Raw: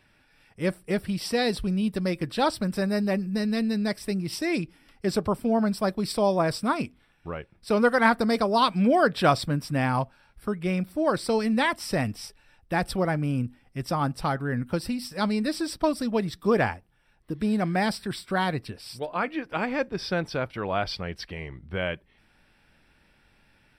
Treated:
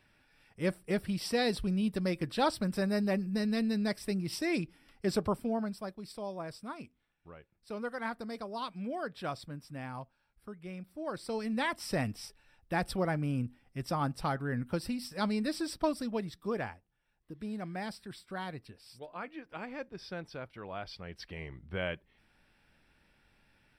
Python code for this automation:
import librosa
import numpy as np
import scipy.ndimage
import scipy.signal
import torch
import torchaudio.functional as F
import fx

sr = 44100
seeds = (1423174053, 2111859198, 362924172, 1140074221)

y = fx.gain(x, sr, db=fx.line((5.28, -5.0), (5.97, -17.0), (10.8, -17.0), (11.87, -6.0), (15.83, -6.0), (16.7, -14.0), (20.91, -14.0), (21.4, -6.0)))